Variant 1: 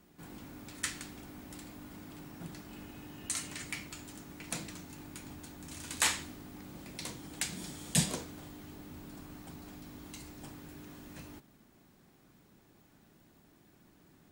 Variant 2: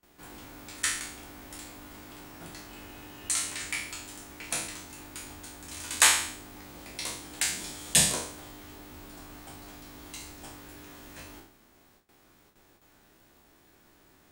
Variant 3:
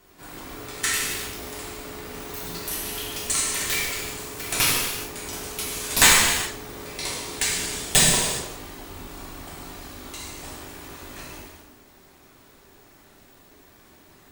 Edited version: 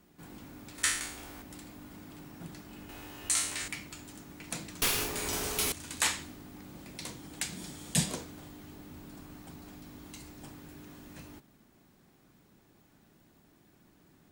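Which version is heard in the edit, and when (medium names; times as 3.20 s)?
1
0.78–1.42 s: from 2
2.89–3.68 s: from 2
4.82–5.72 s: from 3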